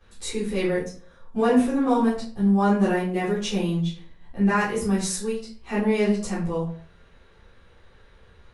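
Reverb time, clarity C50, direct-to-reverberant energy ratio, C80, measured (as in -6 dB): 0.45 s, 5.0 dB, -11.0 dB, 10.5 dB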